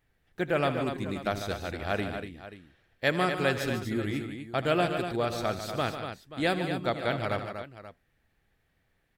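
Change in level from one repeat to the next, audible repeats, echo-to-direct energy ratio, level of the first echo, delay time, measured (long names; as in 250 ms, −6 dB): repeats not evenly spaced, 4, −5.0 dB, −15.5 dB, 79 ms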